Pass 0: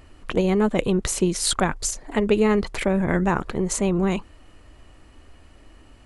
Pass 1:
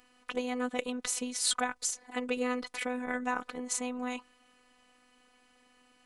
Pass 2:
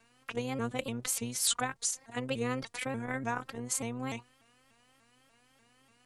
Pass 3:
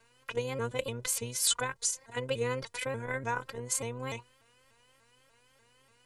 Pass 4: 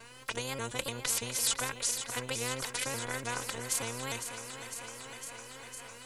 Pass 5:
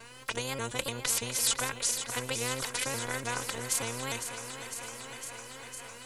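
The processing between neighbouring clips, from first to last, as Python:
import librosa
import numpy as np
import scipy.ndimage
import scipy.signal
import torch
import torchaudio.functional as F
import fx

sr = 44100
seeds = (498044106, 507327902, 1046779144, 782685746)

y1 = scipy.signal.sosfilt(scipy.signal.butter(2, 84.0, 'highpass', fs=sr, output='sos'), x)
y1 = fx.low_shelf(y1, sr, hz=470.0, db=-10.5)
y1 = fx.robotise(y1, sr, hz=249.0)
y1 = y1 * 10.0 ** (-4.0 / 20.0)
y2 = fx.octave_divider(y1, sr, octaves=1, level_db=-3.0)
y2 = fx.high_shelf(y2, sr, hz=8700.0, db=6.5)
y2 = fx.vibrato_shape(y2, sr, shape='saw_up', rate_hz=3.4, depth_cents=160.0)
y2 = y2 * 10.0 ** (-2.0 / 20.0)
y3 = y2 + 0.56 * np.pad(y2, (int(2.0 * sr / 1000.0), 0))[:len(y2)]
y4 = fx.vibrato(y3, sr, rate_hz=2.5, depth_cents=32.0)
y4 = fx.echo_thinned(y4, sr, ms=505, feedback_pct=68, hz=160.0, wet_db=-17)
y4 = fx.spectral_comp(y4, sr, ratio=2.0)
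y5 = y4 + 10.0 ** (-20.0 / 20.0) * np.pad(y4, (int(1113 * sr / 1000.0), 0))[:len(y4)]
y5 = y5 * 10.0 ** (2.0 / 20.0)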